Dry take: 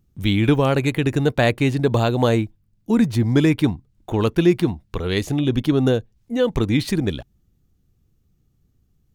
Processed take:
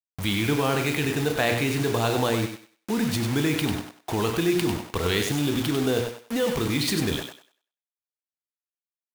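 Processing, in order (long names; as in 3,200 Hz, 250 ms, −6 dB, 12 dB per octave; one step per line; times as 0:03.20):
mains-hum notches 60/120/180/240/300/360/420/480 Hz
double-tracking delay 34 ms −13 dB
in parallel at −1 dB: compressor whose output falls as the input rises −23 dBFS, ratio −0.5
on the sum: high-pass filter 54 Hz 12 dB per octave
low-shelf EQ 470 Hz −6 dB
notch filter 560 Hz, Q 13
bit reduction 5 bits
feedback echo with a high-pass in the loop 97 ms, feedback 26%, high-pass 320 Hz, level −6 dB
level −4.5 dB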